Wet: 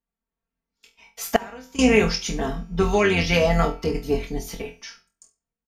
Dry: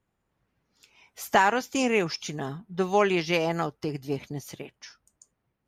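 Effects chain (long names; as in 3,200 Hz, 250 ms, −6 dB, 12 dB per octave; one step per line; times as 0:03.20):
sub-octave generator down 2 octaves, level −3 dB
in parallel at +0.5 dB: brickwall limiter −15 dBFS, peak gain reduction 7 dB
on the sum: tuned comb filter 190 Hz, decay 1.7 s, mix 30%
noise gate −54 dBFS, range −20 dB
comb filter 4.4 ms, depth 83%
flutter between parallel walls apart 4 metres, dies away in 0.25 s
0:01.36–0:01.79: downward compressor 16 to 1, threshold −35 dBFS, peak gain reduction 23 dB
on a send at −20 dB: convolution reverb RT60 0.30 s, pre-delay 57 ms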